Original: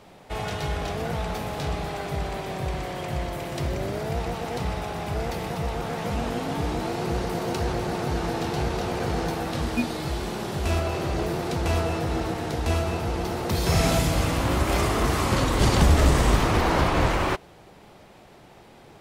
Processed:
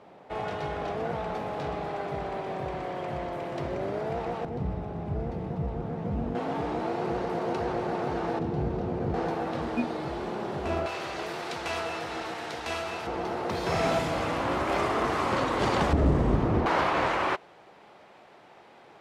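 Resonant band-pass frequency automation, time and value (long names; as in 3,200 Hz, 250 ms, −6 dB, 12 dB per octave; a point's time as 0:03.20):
resonant band-pass, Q 0.5
610 Hz
from 0:04.45 160 Hz
from 0:06.35 640 Hz
from 0:08.39 200 Hz
from 0:09.14 600 Hz
from 0:10.86 2,100 Hz
from 0:13.07 880 Hz
from 0:15.93 220 Hz
from 0:16.66 1,200 Hz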